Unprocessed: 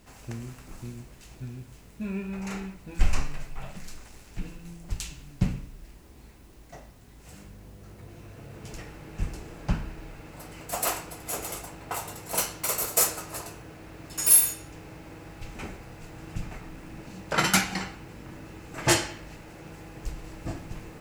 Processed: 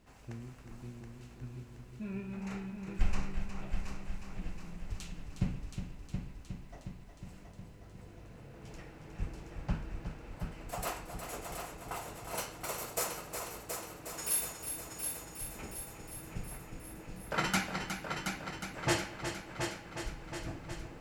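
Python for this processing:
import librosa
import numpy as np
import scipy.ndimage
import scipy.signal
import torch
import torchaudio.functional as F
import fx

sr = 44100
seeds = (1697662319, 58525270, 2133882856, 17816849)

p1 = fx.high_shelf(x, sr, hz=5500.0, db=-9.0)
p2 = p1 + fx.echo_heads(p1, sr, ms=362, heads='first and second', feedback_pct=61, wet_db=-8.5, dry=0)
y = F.gain(torch.from_numpy(p2), -7.5).numpy()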